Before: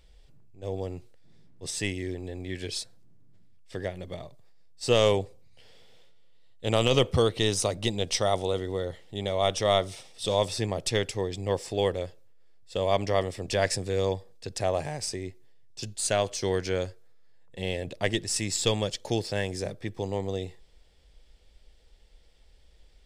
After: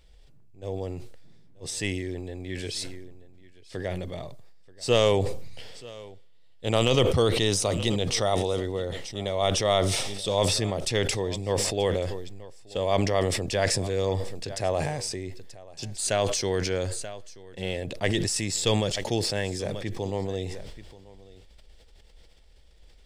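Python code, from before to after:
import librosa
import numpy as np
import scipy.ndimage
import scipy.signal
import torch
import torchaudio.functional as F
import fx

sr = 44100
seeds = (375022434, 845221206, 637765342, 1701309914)

y = x + 10.0 ** (-21.0 / 20.0) * np.pad(x, (int(933 * sr / 1000.0), 0))[:len(x)]
y = fx.sustainer(y, sr, db_per_s=32.0)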